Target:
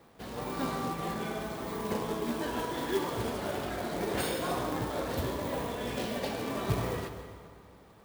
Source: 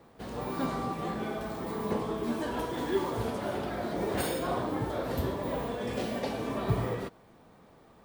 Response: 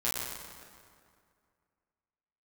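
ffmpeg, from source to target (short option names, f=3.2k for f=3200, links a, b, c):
-filter_complex "[0:a]equalizer=f=3.3k:w=0.48:g=4,acrusher=bits=3:mode=log:mix=0:aa=0.000001,asplit=2[a][b];[1:a]atrim=start_sample=2205,adelay=130[c];[b][c]afir=irnorm=-1:irlink=0,volume=-15.5dB[d];[a][d]amix=inputs=2:normalize=0,volume=-2.5dB"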